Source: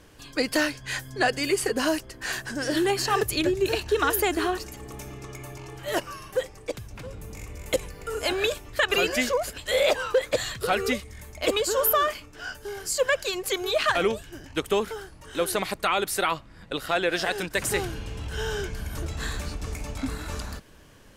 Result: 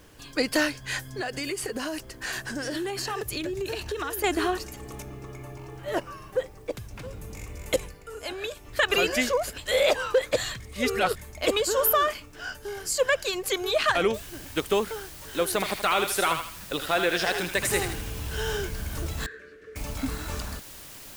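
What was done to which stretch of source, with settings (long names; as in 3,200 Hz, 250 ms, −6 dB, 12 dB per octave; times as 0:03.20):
0:01.04–0:04.24: downward compressor 10 to 1, threshold −27 dBFS
0:05.02–0:06.77: high-shelf EQ 2,300 Hz −10.5 dB
0:07.81–0:08.75: duck −8.5 dB, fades 0.20 s
0:10.60–0:11.16: reverse
0:14.14: noise floor change −65 dB −45 dB
0:15.52–0:18.57: feedback echo with a high-pass in the loop 79 ms, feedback 43%, high-pass 900 Hz, level −5 dB
0:19.26–0:19.76: pair of resonant band-passes 850 Hz, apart 1.9 octaves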